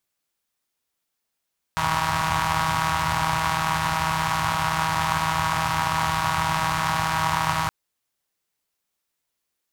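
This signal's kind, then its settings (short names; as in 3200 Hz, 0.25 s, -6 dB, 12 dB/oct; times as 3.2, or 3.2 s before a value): four-cylinder engine model, steady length 5.92 s, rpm 4800, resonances 83/120/960 Hz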